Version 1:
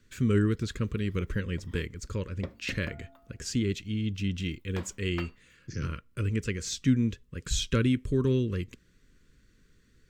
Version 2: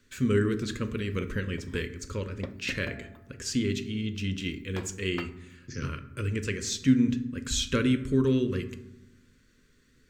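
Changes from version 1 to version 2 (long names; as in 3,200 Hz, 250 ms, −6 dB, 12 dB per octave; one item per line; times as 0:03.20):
speech: add low-shelf EQ 200 Hz −7.5 dB
reverb: on, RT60 0.95 s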